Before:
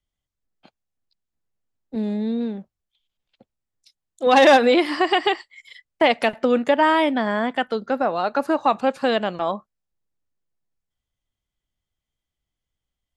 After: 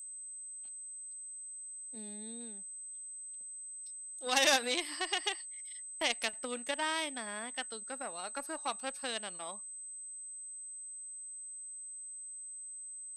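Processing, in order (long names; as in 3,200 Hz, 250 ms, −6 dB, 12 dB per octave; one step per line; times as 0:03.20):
harmonic generator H 3 −14 dB, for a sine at −3.5 dBFS
steady tone 8,200 Hz −46 dBFS
first-order pre-emphasis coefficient 0.9
level +2.5 dB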